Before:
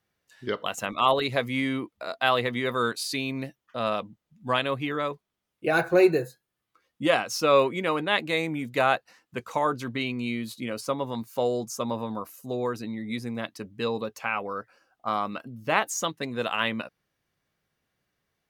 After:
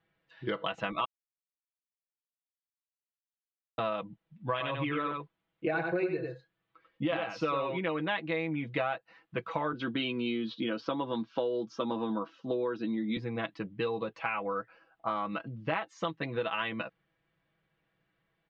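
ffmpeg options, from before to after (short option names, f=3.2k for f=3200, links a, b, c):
-filter_complex "[0:a]asettb=1/sr,asplit=3[a][b][c];[a]atrim=end=4.514[d];[b]atrim=start=4.51:end=7.79,asetpts=PTS-STARTPTS,afade=t=in:d=0.004:c=qsin,afade=t=out:st=3.276:d=0.004:c=qsin,aecho=1:1:92:0.531,atrim=end_sample=144648[e];[c]atrim=start=7.786[f];[d][e]acrossfade=d=0.004:c1=hsin:c2=qsin[g];[g][f]acrossfade=d=0.004:c1=qsin:c2=hsin,asettb=1/sr,asplit=3[h][i][j];[h]atrim=end=9.734[k];[i]atrim=start=9.73:end=13.17,asetpts=PTS-STARTPTS,afade=t=in:d=0.004:c=qsin,afade=t=out:st=3.436:d=0.004:c=qsin,highpass=170,equalizer=f=240:t=q:w=4:g=10,equalizer=f=350:t=q:w=4:g=6,equalizer=f=1.5k:t=q:w=4:g=6,equalizer=f=2.1k:t=q:w=4:g=-6,equalizer=f=3.3k:t=q:w=4:g=9,equalizer=f=5.6k:t=q:w=4:g=7,lowpass=f=6.1k:w=0.5412,lowpass=f=6.1k:w=1.3066[l];[j]atrim=start=13.166[m];[k][l]acrossfade=d=0.004:c1=hsin:c2=qsin[n];[n][m]acrossfade=d=0.004:c1=qsin:c2=hsin,asplit=3[o][p][q];[o]atrim=end=1.05,asetpts=PTS-STARTPTS,afade=t=out:st=1.046:d=0.004:c=hsin[r];[p]atrim=start=1.05:end=3.78,asetpts=PTS-STARTPTS,volume=0[s];[q]atrim=start=3.78,asetpts=PTS-STARTPTS,afade=t=in:d=0.004:c=hsin[t];[r][s][t]concat=n=3:v=0:a=1,lowpass=f=3.4k:w=0.5412,lowpass=f=3.4k:w=1.3066,aecho=1:1:6.1:0.71,acompressor=threshold=-29dB:ratio=6"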